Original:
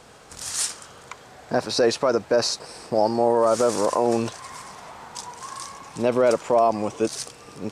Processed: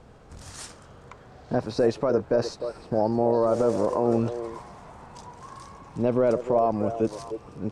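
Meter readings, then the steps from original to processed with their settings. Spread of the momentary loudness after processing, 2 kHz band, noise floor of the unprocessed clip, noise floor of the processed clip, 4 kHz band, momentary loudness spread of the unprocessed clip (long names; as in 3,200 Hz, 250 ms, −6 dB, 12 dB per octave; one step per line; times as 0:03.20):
21 LU, −9.0 dB, −47 dBFS, −49 dBFS, −14.0 dB, 19 LU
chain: spectral tilt −3.5 dB per octave
echo through a band-pass that steps 302 ms, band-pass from 480 Hz, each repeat 1.4 octaves, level −7.5 dB
level −6.5 dB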